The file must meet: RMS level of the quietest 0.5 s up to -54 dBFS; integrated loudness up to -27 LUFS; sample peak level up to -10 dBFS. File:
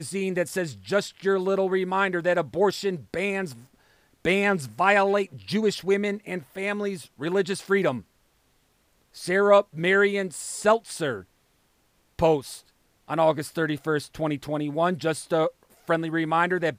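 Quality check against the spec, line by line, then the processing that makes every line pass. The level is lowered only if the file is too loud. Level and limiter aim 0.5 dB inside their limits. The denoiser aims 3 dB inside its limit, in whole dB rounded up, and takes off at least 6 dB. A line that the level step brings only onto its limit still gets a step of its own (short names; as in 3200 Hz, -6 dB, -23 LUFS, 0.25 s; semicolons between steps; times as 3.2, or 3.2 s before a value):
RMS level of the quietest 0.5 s -66 dBFS: OK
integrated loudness -25.0 LUFS: fail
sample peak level -5.0 dBFS: fail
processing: gain -2.5 dB; limiter -10.5 dBFS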